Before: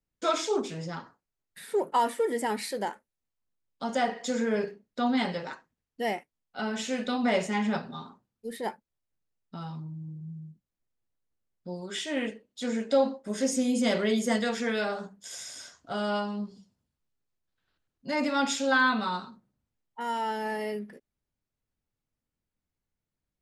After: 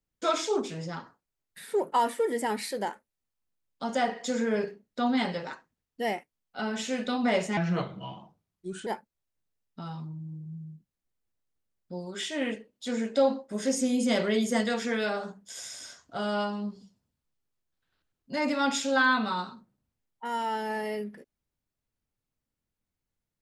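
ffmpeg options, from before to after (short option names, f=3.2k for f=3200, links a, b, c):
-filter_complex "[0:a]asplit=3[a][b][c];[a]atrim=end=7.574[d];[b]atrim=start=7.57:end=8.62,asetpts=PTS-STARTPTS,asetrate=35721,aresample=44100[e];[c]atrim=start=8.616[f];[d][e]acrossfade=d=0.004:c1=hsin:c2=hsin[g];[g][f]acrossfade=d=0.004:c1=hsin:c2=hsin"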